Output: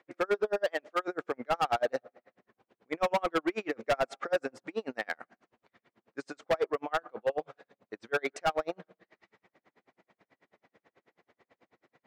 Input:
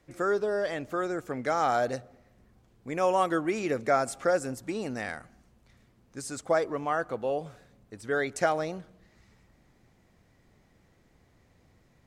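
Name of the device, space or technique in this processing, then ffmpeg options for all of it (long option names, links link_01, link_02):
helicopter radio: -filter_complex "[0:a]highpass=380,lowpass=2900,aeval=exprs='val(0)*pow(10,-39*(0.5-0.5*cos(2*PI*9.2*n/s))/20)':channel_layout=same,asoftclip=type=hard:threshold=-30.5dB,asettb=1/sr,asplit=3[link_01][link_02][link_03];[link_01]atrim=end=0.654[link_04];[link_02]atrim=start=0.65:end=1.08,asetpts=PTS-STARTPTS,afade=type=in:duration=0.004:curve=qsin,afade=type=out:start_time=0.426:duration=0.004:curve=qsin,bass=frequency=250:gain=-9,treble=frequency=4000:gain=3[link_05];[link_03]atrim=start=1.076[link_06];[link_04][link_05]acrossfade=duration=0.004:curve1=hsin:curve2=qsin[link_07];[link_07][link_06]acrossfade=duration=0.004:curve1=qsin:curve2=hsin,volume=8.5dB"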